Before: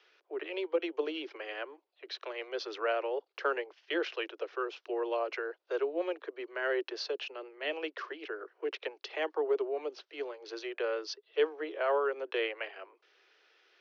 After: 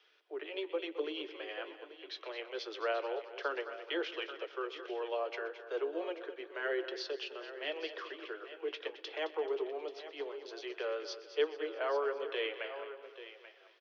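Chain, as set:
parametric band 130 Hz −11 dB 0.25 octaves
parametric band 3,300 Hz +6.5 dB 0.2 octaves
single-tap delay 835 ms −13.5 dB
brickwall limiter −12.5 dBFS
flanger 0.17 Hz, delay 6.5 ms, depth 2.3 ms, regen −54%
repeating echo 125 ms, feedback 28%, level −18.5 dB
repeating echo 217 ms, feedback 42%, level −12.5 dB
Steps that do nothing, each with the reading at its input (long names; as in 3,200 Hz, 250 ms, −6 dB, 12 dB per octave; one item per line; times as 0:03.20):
parametric band 130 Hz: nothing at its input below 270 Hz
brickwall limiter −12.5 dBFS: peak of its input −16.5 dBFS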